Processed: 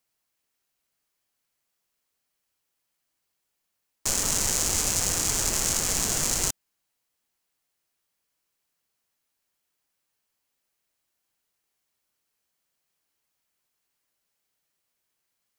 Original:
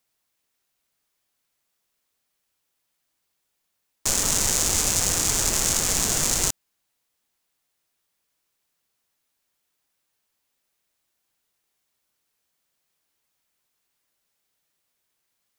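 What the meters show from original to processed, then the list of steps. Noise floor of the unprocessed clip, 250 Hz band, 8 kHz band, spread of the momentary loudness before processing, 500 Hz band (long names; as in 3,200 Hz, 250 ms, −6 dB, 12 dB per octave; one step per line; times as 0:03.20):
−77 dBFS, −3.0 dB, −3.0 dB, 5 LU, −3.0 dB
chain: notch filter 3,600 Hz, Q 22
level −3 dB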